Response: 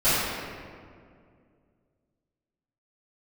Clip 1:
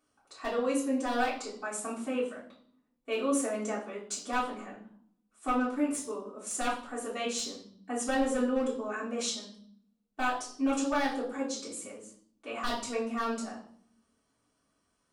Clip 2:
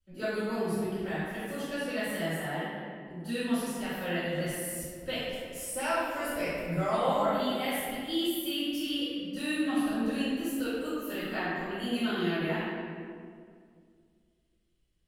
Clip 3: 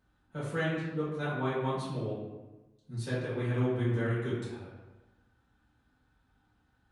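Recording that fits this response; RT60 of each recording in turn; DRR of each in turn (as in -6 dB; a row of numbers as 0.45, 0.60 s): 2; 0.60, 2.2, 1.1 s; -10.0, -18.5, -11.5 dB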